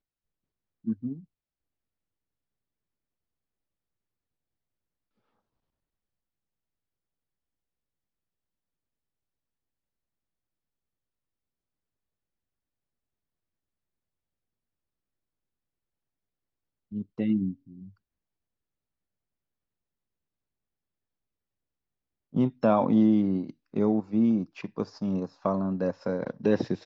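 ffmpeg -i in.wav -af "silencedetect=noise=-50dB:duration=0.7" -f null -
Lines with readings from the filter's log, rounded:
silence_start: 0.00
silence_end: 0.84 | silence_duration: 0.84
silence_start: 1.24
silence_end: 16.92 | silence_duration: 15.67
silence_start: 17.91
silence_end: 22.33 | silence_duration: 4.42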